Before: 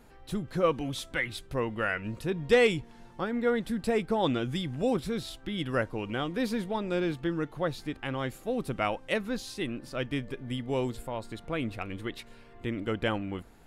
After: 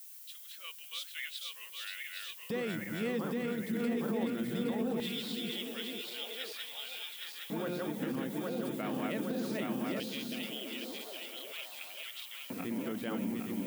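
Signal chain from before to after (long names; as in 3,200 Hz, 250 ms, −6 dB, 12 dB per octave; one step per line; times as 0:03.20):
feedback delay that plays each chunk backwards 407 ms, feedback 78%, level −2 dB
auto-filter high-pass square 0.2 Hz 210–3,000 Hz
background noise violet −42 dBFS
brickwall limiter −19 dBFS, peak gain reduction 11 dB
on a send: echo through a band-pass that steps 507 ms, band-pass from 190 Hz, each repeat 0.7 octaves, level −3.5 dB
on the sum: level −8.5 dB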